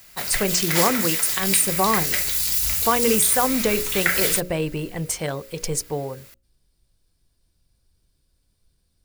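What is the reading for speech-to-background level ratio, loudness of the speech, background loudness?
-2.5 dB, -23.0 LUFS, -20.5 LUFS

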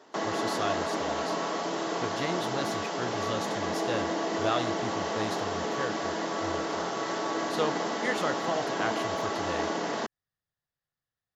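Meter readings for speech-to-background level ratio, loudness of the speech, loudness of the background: -5.0 dB, -36.0 LUFS, -31.0 LUFS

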